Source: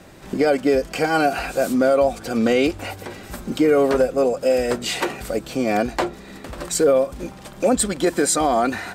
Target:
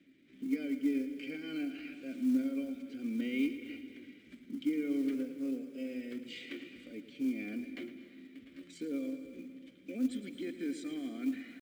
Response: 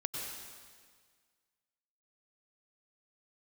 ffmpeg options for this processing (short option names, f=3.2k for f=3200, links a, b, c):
-filter_complex "[0:a]asplit=3[a][b][c];[a]bandpass=f=270:t=q:w=8,volume=0dB[d];[b]bandpass=f=2.29k:t=q:w=8,volume=-6dB[e];[c]bandpass=f=3.01k:t=q:w=8,volume=-9dB[f];[d][e][f]amix=inputs=3:normalize=0,acrusher=bits=7:mode=log:mix=0:aa=0.000001,atempo=0.77,asplit=2[g][h];[1:a]atrim=start_sample=2205,adelay=110[i];[h][i]afir=irnorm=-1:irlink=0,volume=-11dB[j];[g][j]amix=inputs=2:normalize=0,volume=-7.5dB"